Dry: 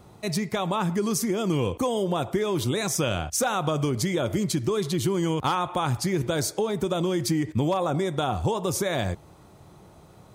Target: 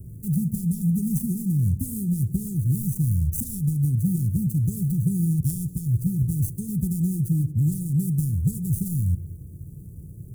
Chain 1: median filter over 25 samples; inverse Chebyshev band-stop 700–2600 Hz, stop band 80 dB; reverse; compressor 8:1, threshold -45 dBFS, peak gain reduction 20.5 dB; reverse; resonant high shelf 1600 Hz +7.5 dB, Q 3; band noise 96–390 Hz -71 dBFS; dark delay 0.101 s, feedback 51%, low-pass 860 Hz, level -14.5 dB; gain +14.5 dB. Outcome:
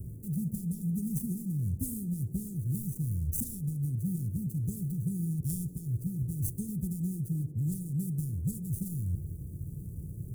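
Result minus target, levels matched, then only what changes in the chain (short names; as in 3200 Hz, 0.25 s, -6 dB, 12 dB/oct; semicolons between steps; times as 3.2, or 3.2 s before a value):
compressor: peak gain reduction +10 dB
change: compressor 8:1, threshold -33.5 dBFS, peak gain reduction 10.5 dB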